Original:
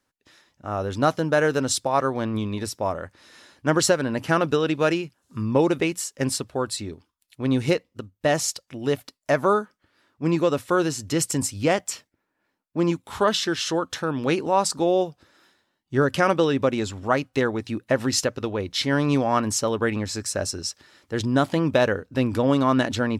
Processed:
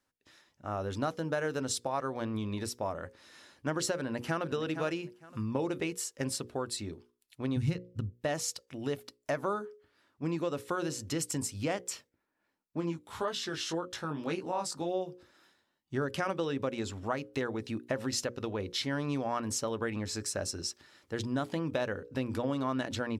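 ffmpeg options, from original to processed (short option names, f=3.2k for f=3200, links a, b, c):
-filter_complex "[0:a]asplit=2[a][b];[b]afade=t=in:st=3.95:d=0.01,afade=t=out:st=4.46:d=0.01,aecho=0:1:460|920:0.266073|0.0399109[c];[a][c]amix=inputs=2:normalize=0,asplit=3[d][e][f];[d]afade=t=out:st=7.56:d=0.02[g];[e]asubboost=boost=11.5:cutoff=150,afade=t=in:st=7.56:d=0.02,afade=t=out:st=8.11:d=0.02[h];[f]afade=t=in:st=8.11:d=0.02[i];[g][h][i]amix=inputs=3:normalize=0,asplit=3[j][k][l];[j]afade=t=out:st=12.8:d=0.02[m];[k]flanger=delay=16:depth=4.6:speed=1.8,afade=t=in:st=12.8:d=0.02,afade=t=out:st=15.07:d=0.02[n];[l]afade=t=in:st=15.07:d=0.02[o];[m][n][o]amix=inputs=3:normalize=0,bandreject=f=60:t=h:w=6,bandreject=f=120:t=h:w=6,bandreject=f=180:t=h:w=6,bandreject=f=240:t=h:w=6,bandreject=f=300:t=h:w=6,bandreject=f=360:t=h:w=6,bandreject=f=420:t=h:w=6,bandreject=f=480:t=h:w=6,bandreject=f=540:t=h:w=6,acompressor=threshold=-26dB:ratio=2.5,volume=-5.5dB"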